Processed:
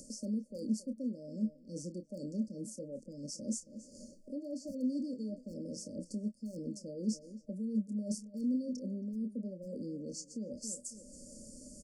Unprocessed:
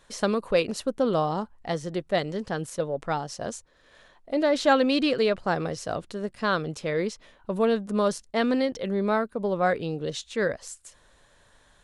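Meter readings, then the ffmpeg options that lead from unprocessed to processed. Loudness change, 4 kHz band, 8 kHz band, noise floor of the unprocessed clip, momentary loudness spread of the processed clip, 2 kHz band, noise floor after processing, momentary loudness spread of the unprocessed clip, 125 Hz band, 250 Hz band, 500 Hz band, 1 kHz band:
−13.0 dB, −19.0 dB, −4.0 dB, −60 dBFS, 10 LU, below −40 dB, −59 dBFS, 10 LU, −11.0 dB, −7.0 dB, −20.5 dB, below −40 dB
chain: -filter_complex "[0:a]acrossover=split=360 7900:gain=0.0891 1 0.178[link_01][link_02][link_03];[link_01][link_02][link_03]amix=inputs=3:normalize=0,asplit=2[link_04][link_05];[link_05]adelay=28,volume=-9.5dB[link_06];[link_04][link_06]amix=inputs=2:normalize=0,asplit=2[link_07][link_08];[link_08]adelay=274,lowpass=frequency=4200:poles=1,volume=-20.5dB,asplit=2[link_09][link_10];[link_10]adelay=274,lowpass=frequency=4200:poles=1,volume=0.23[link_11];[link_07][link_09][link_11]amix=inputs=3:normalize=0,asoftclip=type=hard:threshold=-14.5dB,areverse,acompressor=threshold=-39dB:ratio=8,areverse,firequalizer=gain_entry='entry(150,0);entry(220,14);entry(400,-19);entry(570,-14);entry(1400,-22);entry(8100,-3)':delay=0.05:min_phase=1,acompressor=mode=upward:threshold=-45dB:ratio=2.5,afftfilt=real='re*(1-between(b*sr/4096,620,4400))':imag='im*(1-between(b*sr/4096,620,4400))':win_size=4096:overlap=0.75,volume=9dB"

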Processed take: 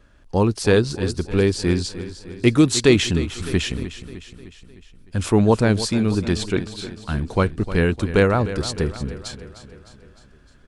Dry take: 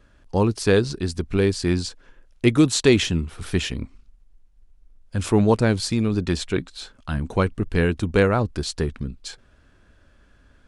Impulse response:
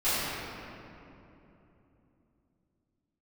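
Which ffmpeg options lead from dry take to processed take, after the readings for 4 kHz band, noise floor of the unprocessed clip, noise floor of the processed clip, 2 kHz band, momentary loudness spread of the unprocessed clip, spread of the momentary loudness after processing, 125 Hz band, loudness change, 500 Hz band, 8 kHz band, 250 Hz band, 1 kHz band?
+2.0 dB, −57 dBFS, −51 dBFS, +2.0 dB, 15 LU, 16 LU, +2.0 dB, +1.5 dB, +2.0 dB, +2.0 dB, +2.0 dB, +2.0 dB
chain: -af "aecho=1:1:305|610|915|1220|1525|1830:0.211|0.118|0.0663|0.0371|0.0208|0.0116,volume=1.5dB"

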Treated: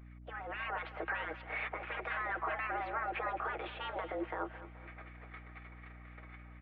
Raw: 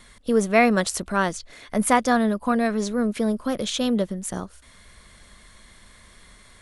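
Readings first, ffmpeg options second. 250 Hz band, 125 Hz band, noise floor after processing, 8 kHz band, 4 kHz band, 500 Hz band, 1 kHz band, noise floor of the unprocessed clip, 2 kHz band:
−26.5 dB, −16.0 dB, −53 dBFS, below −40 dB, −18.0 dB, −18.5 dB, −12.0 dB, −52 dBFS, −9.5 dB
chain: -filter_complex "[0:a]agate=range=-17dB:threshold=-46dB:ratio=16:detection=peak,asplit=2[link_01][link_02];[link_02]highpass=frequency=720:poles=1,volume=16dB,asoftclip=type=tanh:threshold=-2.5dB[link_03];[link_01][link_03]amix=inputs=2:normalize=0,lowpass=frequency=1900:poles=1,volume=-6dB,afftfilt=real='re*lt(hypot(re,im),0.316)':imag='im*lt(hypot(re,im),0.316)':win_size=1024:overlap=0.75,aecho=1:1:6.3:0.48,acompressor=threshold=-44dB:ratio=1.5,alimiter=level_in=6.5dB:limit=-24dB:level=0:latency=1:release=107,volume=-6.5dB,dynaudnorm=framelen=410:gausssize=3:maxgain=9dB,highpass=frequency=190:width_type=q:width=0.5412,highpass=frequency=190:width_type=q:width=1.307,lowpass=frequency=2600:width_type=q:width=0.5176,lowpass=frequency=2600:width_type=q:width=0.7071,lowpass=frequency=2600:width_type=q:width=1.932,afreqshift=150,acrossover=split=1200[link_04][link_05];[link_04]aeval=exprs='val(0)*(1-0.5/2+0.5/2*cos(2*PI*4*n/s))':channel_layout=same[link_06];[link_05]aeval=exprs='val(0)*(1-0.5/2-0.5/2*cos(2*PI*4*n/s))':channel_layout=same[link_07];[link_06][link_07]amix=inputs=2:normalize=0,aeval=exprs='val(0)+0.00355*(sin(2*PI*60*n/s)+sin(2*PI*2*60*n/s)/2+sin(2*PI*3*60*n/s)/3+sin(2*PI*4*60*n/s)/4+sin(2*PI*5*60*n/s)/5)':channel_layout=same,aemphasis=mode=reproduction:type=cd,aecho=1:1:214|428|642|856|1070:0.168|0.0839|0.042|0.021|0.0105,volume=-2.5dB"

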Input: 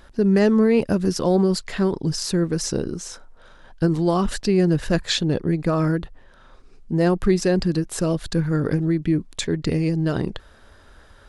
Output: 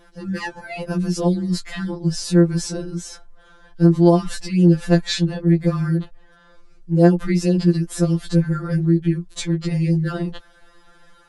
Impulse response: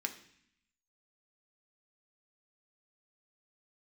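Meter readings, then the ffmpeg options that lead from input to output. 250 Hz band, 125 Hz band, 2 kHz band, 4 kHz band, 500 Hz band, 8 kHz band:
+2.0 dB, +4.5 dB, −0.5 dB, −1.5 dB, −1.0 dB, −1.5 dB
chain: -af "afftfilt=real='re*2.83*eq(mod(b,8),0)':imag='im*2.83*eq(mod(b,8),0)':win_size=2048:overlap=0.75,volume=1.5dB"

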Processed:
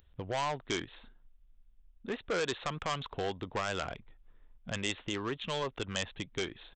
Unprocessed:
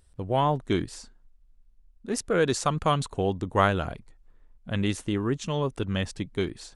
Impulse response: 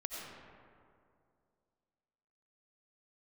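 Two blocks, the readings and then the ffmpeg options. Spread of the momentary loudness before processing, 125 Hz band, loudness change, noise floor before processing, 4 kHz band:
10 LU, −13.5 dB, −8.5 dB, −59 dBFS, −2.0 dB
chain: -filter_complex "[0:a]aresample=8000,aresample=44100,acrossover=split=460[link_01][link_02];[link_01]acompressor=threshold=-37dB:ratio=6[link_03];[link_02]alimiter=limit=-19dB:level=0:latency=1:release=123[link_04];[link_03][link_04]amix=inputs=2:normalize=0,aeval=exprs='0.141*(cos(1*acos(clip(val(0)/0.141,-1,1)))-cos(1*PI/2))+0.0112*(cos(7*acos(clip(val(0)/0.141,-1,1)))-cos(7*PI/2))':channel_layout=same,aresample=16000,asoftclip=type=tanh:threshold=-32.5dB,aresample=44100,aemphasis=mode=production:type=75kf,volume=4dB"

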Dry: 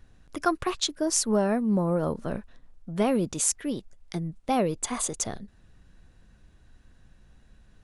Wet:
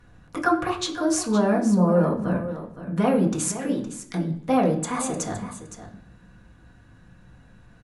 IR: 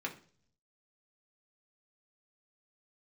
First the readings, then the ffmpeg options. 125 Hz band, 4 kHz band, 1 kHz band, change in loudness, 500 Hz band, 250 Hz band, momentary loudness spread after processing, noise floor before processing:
+6.5 dB, −1.5 dB, +4.5 dB, +3.5 dB, +4.0 dB, +5.5 dB, 14 LU, −59 dBFS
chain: -filter_complex "[0:a]asplit=2[link_01][link_02];[link_02]acompressor=threshold=-36dB:ratio=6,volume=0dB[link_03];[link_01][link_03]amix=inputs=2:normalize=0,aecho=1:1:515:0.251[link_04];[1:a]atrim=start_sample=2205,asetrate=28224,aresample=44100[link_05];[link_04][link_05]afir=irnorm=-1:irlink=0,volume=-2.5dB"

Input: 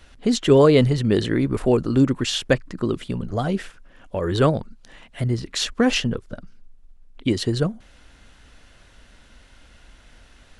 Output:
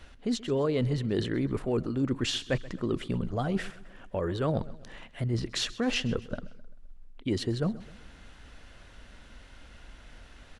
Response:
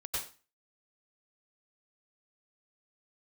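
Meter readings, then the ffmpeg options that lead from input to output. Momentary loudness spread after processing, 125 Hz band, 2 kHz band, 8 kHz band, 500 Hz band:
12 LU, −8.5 dB, −8.5 dB, −9.0 dB, −11.0 dB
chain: -af "highshelf=frequency=4800:gain=-6,areverse,acompressor=threshold=-26dB:ratio=6,areverse,aecho=1:1:130|260|390|520:0.112|0.0516|0.0237|0.0109"

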